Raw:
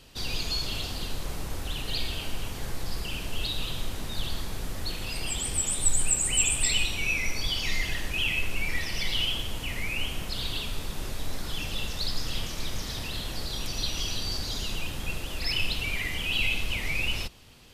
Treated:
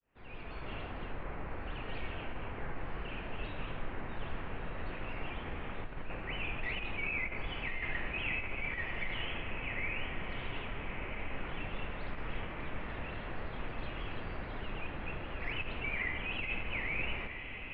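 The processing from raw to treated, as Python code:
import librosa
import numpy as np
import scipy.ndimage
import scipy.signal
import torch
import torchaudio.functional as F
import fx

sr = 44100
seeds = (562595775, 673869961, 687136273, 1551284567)

p1 = fx.fade_in_head(x, sr, length_s=0.72)
p2 = scipy.signal.sosfilt(scipy.signal.butter(6, 2300.0, 'lowpass', fs=sr, output='sos'), p1)
p3 = fx.low_shelf(p2, sr, hz=270.0, db=-8.0)
p4 = fx.over_compress(p3, sr, threshold_db=-33.0, ratio=-0.5)
p5 = p4 + fx.echo_diffused(p4, sr, ms=1295, feedback_pct=44, wet_db=-7.0, dry=0)
y = p5 * 10.0 ** (-1.5 / 20.0)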